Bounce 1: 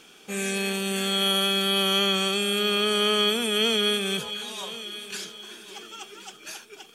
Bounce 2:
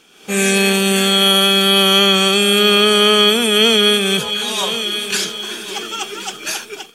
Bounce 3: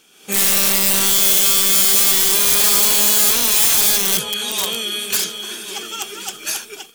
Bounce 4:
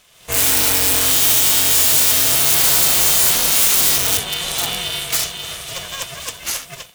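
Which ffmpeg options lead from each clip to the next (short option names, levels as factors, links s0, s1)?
-af "dynaudnorm=f=100:g=5:m=6.31"
-af "aeval=exprs='(mod(3.16*val(0)+1,2)-1)/3.16':c=same,crystalizer=i=1.5:c=0,volume=0.531"
-af "aeval=exprs='val(0)*sgn(sin(2*PI*270*n/s))':c=same"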